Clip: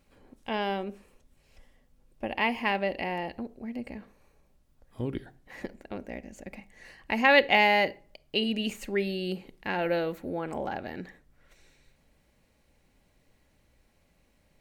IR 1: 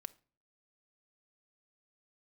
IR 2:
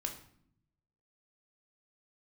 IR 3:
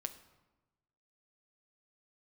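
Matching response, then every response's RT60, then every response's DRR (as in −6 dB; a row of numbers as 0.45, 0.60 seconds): 1; non-exponential decay, 0.65 s, 1.1 s; 11.5, 2.0, 7.5 decibels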